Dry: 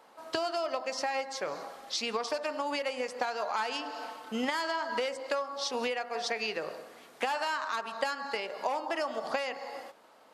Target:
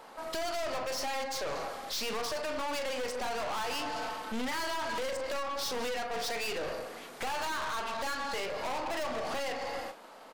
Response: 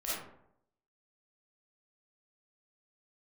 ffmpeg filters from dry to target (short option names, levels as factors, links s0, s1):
-filter_complex "[0:a]asplit=2[s0][s1];[s1]adelay=40,volume=0.266[s2];[s0][s2]amix=inputs=2:normalize=0,aeval=exprs='(tanh(126*val(0)+0.45)-tanh(0.45))/126':c=same,volume=2.82"